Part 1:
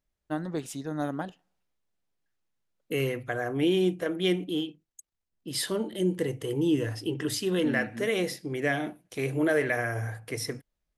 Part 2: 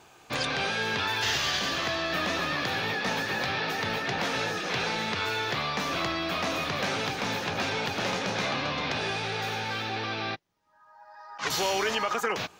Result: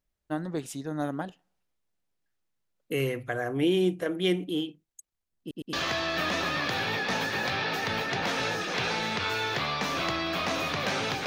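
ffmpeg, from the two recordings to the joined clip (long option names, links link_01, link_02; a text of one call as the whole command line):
ffmpeg -i cue0.wav -i cue1.wav -filter_complex "[0:a]apad=whole_dur=11.26,atrim=end=11.26,asplit=3[link_01][link_02][link_03];[link_01]atrim=end=5.512[link_04];[link_02]atrim=start=5.398:end=5.512[link_05];[link_03]atrim=start=5.398:end=5.512[link_06];[1:a]atrim=start=1.688:end=7.22[link_07];[link_04][link_05]acrossfade=duration=0.004:curve1=hsin:curve2=hsin[link_08];[link_08][link_06]acrossfade=duration=0.004:curve1=hsin:curve2=hsin[link_09];[link_09][link_07]acrossfade=duration=0.004:curve1=hsin:curve2=hsin" out.wav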